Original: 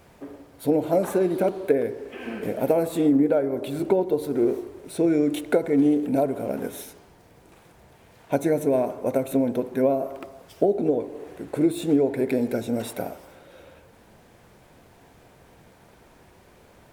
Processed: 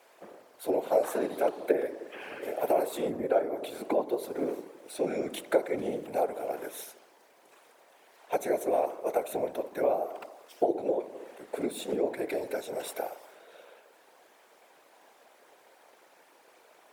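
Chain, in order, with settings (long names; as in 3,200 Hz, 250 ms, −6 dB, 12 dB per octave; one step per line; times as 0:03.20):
high-pass filter 440 Hz 24 dB per octave
random phases in short frames
level −3 dB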